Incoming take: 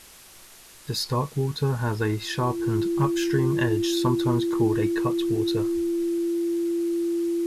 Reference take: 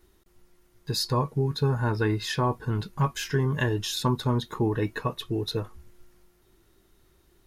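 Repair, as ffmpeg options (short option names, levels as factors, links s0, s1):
-af "bandreject=f=340:w=30,afwtdn=0.0045"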